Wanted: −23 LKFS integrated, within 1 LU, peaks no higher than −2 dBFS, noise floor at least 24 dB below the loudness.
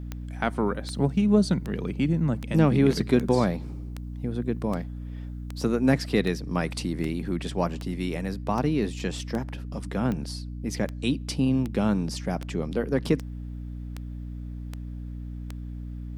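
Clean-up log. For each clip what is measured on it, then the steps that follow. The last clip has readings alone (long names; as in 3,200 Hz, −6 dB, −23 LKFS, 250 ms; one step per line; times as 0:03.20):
number of clicks 21; mains hum 60 Hz; hum harmonics up to 300 Hz; level of the hum −33 dBFS; integrated loudness −27.0 LKFS; sample peak −7.5 dBFS; target loudness −23.0 LKFS
→ click removal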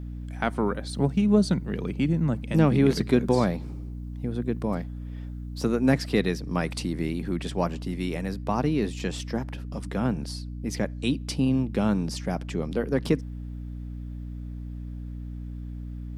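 number of clicks 0; mains hum 60 Hz; hum harmonics up to 300 Hz; level of the hum −33 dBFS
→ hum removal 60 Hz, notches 5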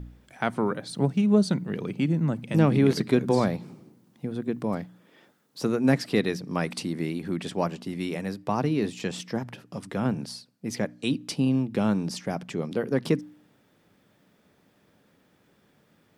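mains hum none found; integrated loudness −27.0 LKFS; sample peak −7.0 dBFS; target loudness −23.0 LKFS
→ level +4 dB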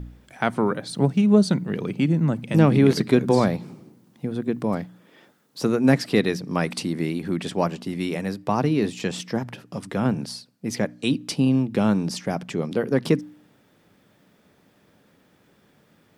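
integrated loudness −23.0 LKFS; sample peak −3.5 dBFS; background noise floor −61 dBFS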